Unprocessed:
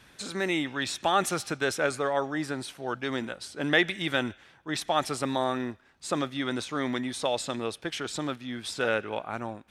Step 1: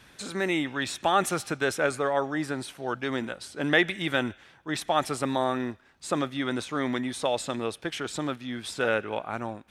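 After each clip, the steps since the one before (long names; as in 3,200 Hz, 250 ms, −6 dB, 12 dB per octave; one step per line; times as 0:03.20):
dynamic equaliser 4,900 Hz, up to −4 dB, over −45 dBFS, Q 1.1
level +1.5 dB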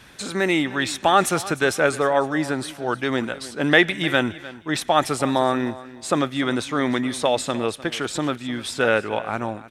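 repeating echo 303 ms, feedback 22%, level −17.5 dB
level +6.5 dB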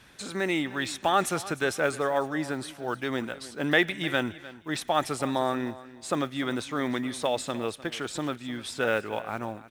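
one scale factor per block 7 bits
level −7 dB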